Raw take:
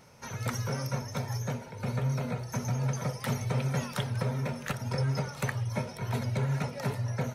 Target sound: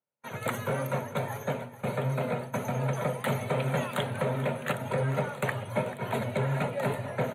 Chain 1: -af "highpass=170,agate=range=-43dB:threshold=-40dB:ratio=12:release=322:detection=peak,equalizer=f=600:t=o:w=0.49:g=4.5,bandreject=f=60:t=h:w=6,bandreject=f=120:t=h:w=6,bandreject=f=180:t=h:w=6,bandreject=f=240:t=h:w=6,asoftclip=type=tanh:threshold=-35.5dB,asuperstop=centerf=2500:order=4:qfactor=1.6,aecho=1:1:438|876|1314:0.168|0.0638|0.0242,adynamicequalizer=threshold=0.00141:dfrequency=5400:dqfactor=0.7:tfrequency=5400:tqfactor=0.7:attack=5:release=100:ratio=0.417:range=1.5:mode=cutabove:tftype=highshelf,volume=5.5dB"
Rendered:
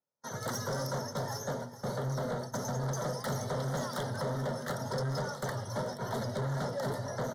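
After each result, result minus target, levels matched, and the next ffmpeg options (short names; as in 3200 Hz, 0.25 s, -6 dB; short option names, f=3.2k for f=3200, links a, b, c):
soft clip: distortion +13 dB; 2000 Hz band -3.0 dB
-af "highpass=170,agate=range=-43dB:threshold=-40dB:ratio=12:release=322:detection=peak,equalizer=f=600:t=o:w=0.49:g=4.5,bandreject=f=60:t=h:w=6,bandreject=f=120:t=h:w=6,bandreject=f=180:t=h:w=6,bandreject=f=240:t=h:w=6,asoftclip=type=tanh:threshold=-23.5dB,asuperstop=centerf=2500:order=4:qfactor=1.6,aecho=1:1:438|876|1314:0.168|0.0638|0.0242,adynamicequalizer=threshold=0.00141:dfrequency=5400:dqfactor=0.7:tfrequency=5400:tqfactor=0.7:attack=5:release=100:ratio=0.417:range=1.5:mode=cutabove:tftype=highshelf,volume=5.5dB"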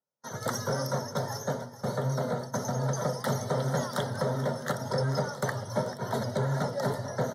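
2000 Hz band -3.0 dB
-af "highpass=170,agate=range=-43dB:threshold=-40dB:ratio=12:release=322:detection=peak,equalizer=f=600:t=o:w=0.49:g=4.5,bandreject=f=60:t=h:w=6,bandreject=f=120:t=h:w=6,bandreject=f=180:t=h:w=6,bandreject=f=240:t=h:w=6,asoftclip=type=tanh:threshold=-23.5dB,asuperstop=centerf=5300:order=4:qfactor=1.6,aecho=1:1:438|876|1314:0.168|0.0638|0.0242,adynamicequalizer=threshold=0.00141:dfrequency=5400:dqfactor=0.7:tfrequency=5400:tqfactor=0.7:attack=5:release=100:ratio=0.417:range=1.5:mode=cutabove:tftype=highshelf,volume=5.5dB"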